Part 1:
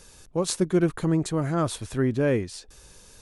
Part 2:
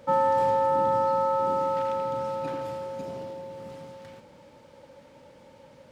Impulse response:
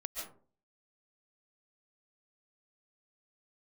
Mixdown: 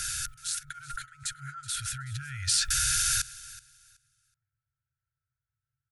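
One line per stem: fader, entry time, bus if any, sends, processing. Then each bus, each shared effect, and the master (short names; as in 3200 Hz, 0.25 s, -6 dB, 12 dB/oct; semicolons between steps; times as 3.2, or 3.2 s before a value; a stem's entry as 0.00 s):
1.92 s -22.5 dB -> 2.21 s -15.5 dB, 0.00 s, no send, echo send -19 dB, low shelf 74 Hz -10 dB; small resonant body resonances 650/1400 Hz, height 18 dB, ringing for 50 ms; fast leveller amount 100%
-16.0 dB, 0.00 s, send -4 dB, echo send -4 dB, ladder low-pass 1000 Hz, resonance 75%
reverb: on, RT60 0.45 s, pre-delay 0.1 s
echo: feedback echo 0.375 s, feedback 21%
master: FFT band-reject 150–1300 Hz; high shelf 5100 Hz +6 dB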